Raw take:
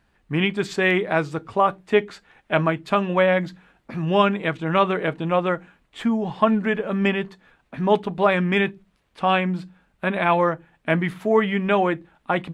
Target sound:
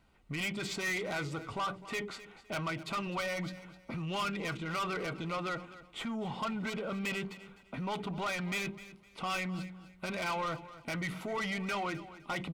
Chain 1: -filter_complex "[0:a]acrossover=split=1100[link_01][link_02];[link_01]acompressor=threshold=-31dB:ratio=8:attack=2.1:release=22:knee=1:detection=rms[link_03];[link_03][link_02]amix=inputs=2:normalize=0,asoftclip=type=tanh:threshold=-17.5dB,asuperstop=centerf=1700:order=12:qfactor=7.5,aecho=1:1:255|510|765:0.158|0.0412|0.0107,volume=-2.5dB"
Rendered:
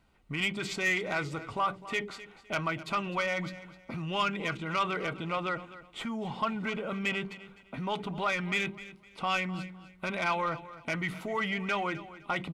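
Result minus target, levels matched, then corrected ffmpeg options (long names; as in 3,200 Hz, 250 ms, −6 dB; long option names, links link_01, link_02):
soft clipping: distortion −9 dB
-filter_complex "[0:a]acrossover=split=1100[link_01][link_02];[link_01]acompressor=threshold=-31dB:ratio=8:attack=2.1:release=22:knee=1:detection=rms[link_03];[link_03][link_02]amix=inputs=2:normalize=0,asoftclip=type=tanh:threshold=-28dB,asuperstop=centerf=1700:order=12:qfactor=7.5,aecho=1:1:255|510|765:0.158|0.0412|0.0107,volume=-2.5dB"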